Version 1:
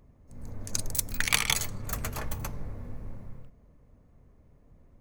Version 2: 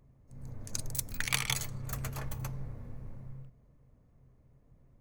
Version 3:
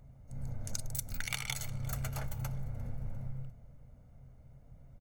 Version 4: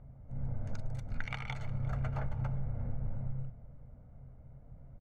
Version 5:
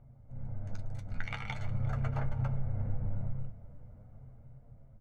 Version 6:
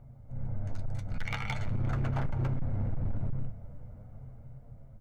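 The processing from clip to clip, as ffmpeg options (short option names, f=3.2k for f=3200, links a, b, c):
-af "equalizer=f=130:t=o:w=0.21:g=12,volume=-6dB"
-af "aecho=1:1:1.4:0.54,acompressor=threshold=-37dB:ratio=6,aecho=1:1:350|700|1050:0.075|0.0352|0.0166,volume=4dB"
-af "lowpass=1.6k,volume=3dB"
-af "dynaudnorm=f=310:g=7:m=6dB,flanger=delay=8.4:depth=2.6:regen=44:speed=0.44:shape=triangular"
-af "asoftclip=type=hard:threshold=-31dB,volume=5dB"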